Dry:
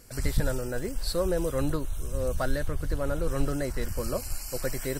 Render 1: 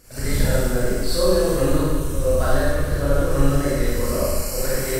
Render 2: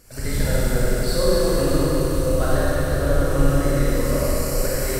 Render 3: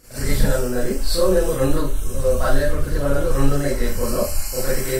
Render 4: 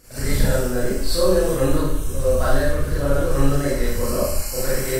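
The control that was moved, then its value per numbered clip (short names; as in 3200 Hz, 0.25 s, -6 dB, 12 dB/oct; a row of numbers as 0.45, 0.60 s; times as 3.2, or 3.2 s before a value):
Schroeder reverb, RT60: 1.5, 4.3, 0.32, 0.72 s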